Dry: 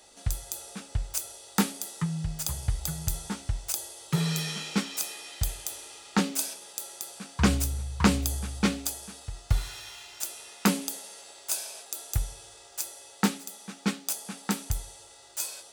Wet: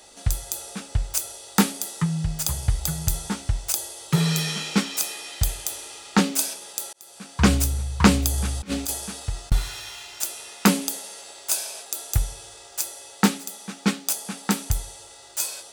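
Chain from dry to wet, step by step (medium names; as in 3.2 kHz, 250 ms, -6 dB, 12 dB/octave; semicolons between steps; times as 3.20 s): 6.93–7.68 s: fade in equal-power; 8.34–9.52 s: compressor with a negative ratio -32 dBFS, ratio -0.5; trim +6 dB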